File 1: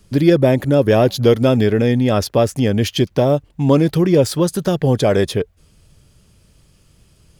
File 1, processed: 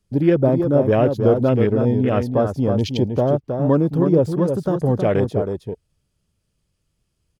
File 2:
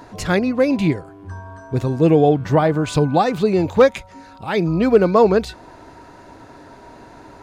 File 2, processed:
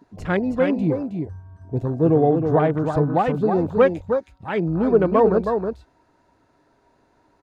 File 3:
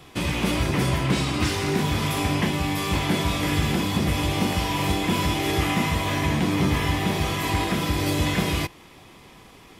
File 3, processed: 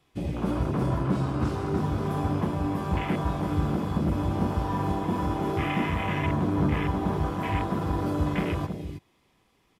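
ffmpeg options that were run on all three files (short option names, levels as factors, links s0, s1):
-filter_complex "[0:a]asplit=2[s0][s1];[s1]aecho=0:1:318:0.501[s2];[s0][s2]amix=inputs=2:normalize=0,afwtdn=0.0501,volume=0.668"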